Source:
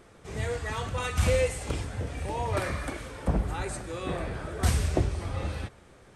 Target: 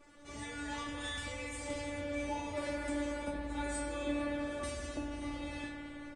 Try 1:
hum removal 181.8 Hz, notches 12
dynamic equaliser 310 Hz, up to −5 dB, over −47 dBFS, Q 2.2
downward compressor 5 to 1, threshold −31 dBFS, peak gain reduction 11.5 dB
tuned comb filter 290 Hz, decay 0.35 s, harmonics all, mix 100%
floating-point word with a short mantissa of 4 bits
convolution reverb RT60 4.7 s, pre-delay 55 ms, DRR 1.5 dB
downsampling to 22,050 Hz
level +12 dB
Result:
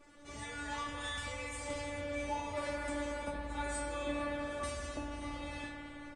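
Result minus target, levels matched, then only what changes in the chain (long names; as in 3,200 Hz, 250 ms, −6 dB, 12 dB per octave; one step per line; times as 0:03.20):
250 Hz band −3.5 dB
change: dynamic equaliser 1,100 Hz, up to −5 dB, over −47 dBFS, Q 2.2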